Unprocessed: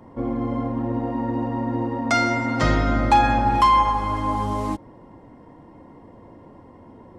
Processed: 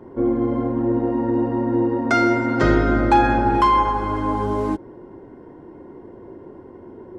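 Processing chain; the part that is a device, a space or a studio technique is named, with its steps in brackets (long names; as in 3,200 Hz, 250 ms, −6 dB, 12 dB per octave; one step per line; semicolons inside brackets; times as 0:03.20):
inside a helmet (high-shelf EQ 3,500 Hz −7 dB; hollow resonant body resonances 380/1,500 Hz, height 16 dB, ringing for 50 ms)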